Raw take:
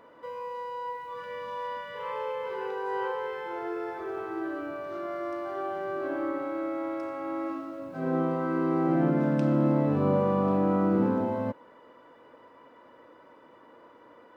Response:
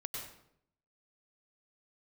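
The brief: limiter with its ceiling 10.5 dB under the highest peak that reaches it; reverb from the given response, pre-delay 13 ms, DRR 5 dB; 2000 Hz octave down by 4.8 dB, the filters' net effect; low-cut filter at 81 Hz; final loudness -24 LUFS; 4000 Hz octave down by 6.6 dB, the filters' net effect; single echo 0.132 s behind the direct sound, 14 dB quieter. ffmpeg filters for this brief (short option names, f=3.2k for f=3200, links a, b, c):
-filter_complex "[0:a]highpass=81,equalizer=f=2k:t=o:g=-5.5,equalizer=f=4k:t=o:g=-7,alimiter=level_in=0.5dB:limit=-24dB:level=0:latency=1,volume=-0.5dB,aecho=1:1:132:0.2,asplit=2[a][b];[1:a]atrim=start_sample=2205,adelay=13[c];[b][c]afir=irnorm=-1:irlink=0,volume=-5dB[d];[a][d]amix=inputs=2:normalize=0,volume=10dB"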